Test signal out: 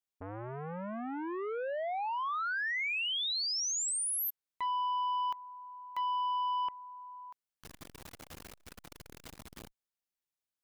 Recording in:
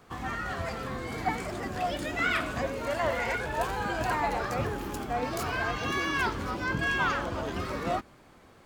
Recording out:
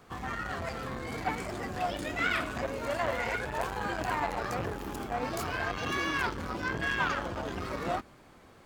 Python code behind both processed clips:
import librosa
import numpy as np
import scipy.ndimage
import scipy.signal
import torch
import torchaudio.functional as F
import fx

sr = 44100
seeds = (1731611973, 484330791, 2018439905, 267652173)

y = fx.transformer_sat(x, sr, knee_hz=830.0)